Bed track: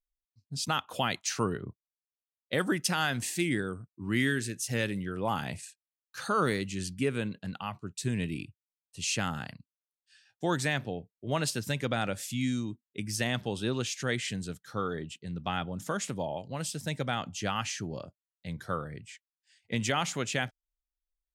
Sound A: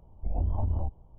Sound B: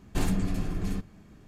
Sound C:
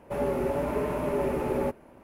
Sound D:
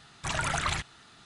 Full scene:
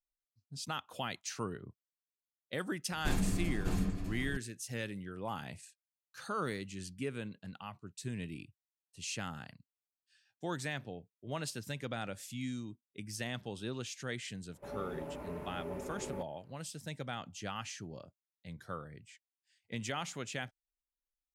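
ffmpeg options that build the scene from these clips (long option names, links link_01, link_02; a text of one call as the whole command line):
ffmpeg -i bed.wav -i cue0.wav -i cue1.wav -i cue2.wav -filter_complex "[0:a]volume=-9dB[link_01];[2:a]aecho=1:1:601:0.562,atrim=end=1.47,asetpts=PTS-STARTPTS,volume=-5.5dB,afade=type=in:duration=0.004:curve=hsin,afade=type=out:start_time=1.466:duration=0.004:curve=hsin,adelay=2900[link_02];[3:a]atrim=end=2.03,asetpts=PTS-STARTPTS,volume=-15dB,afade=type=in:duration=0.004:curve=hsin,afade=type=out:start_time=2.026:duration=0.004:curve=hsin,adelay=14520[link_03];[link_01][link_02][link_03]amix=inputs=3:normalize=0" out.wav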